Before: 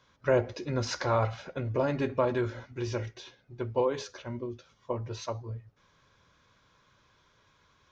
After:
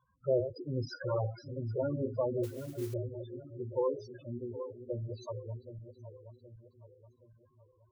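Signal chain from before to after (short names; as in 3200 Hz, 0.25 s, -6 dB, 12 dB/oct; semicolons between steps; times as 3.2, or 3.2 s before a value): regenerating reverse delay 0.386 s, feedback 66%, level -9 dB; loudest bins only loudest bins 8; 2.43–2.94 modulation noise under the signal 17 dB; gain -3.5 dB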